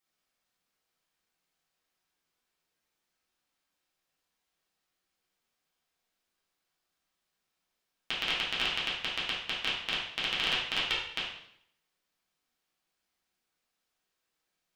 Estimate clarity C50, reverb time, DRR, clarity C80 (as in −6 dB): 2.5 dB, 0.70 s, −8.5 dB, 6.5 dB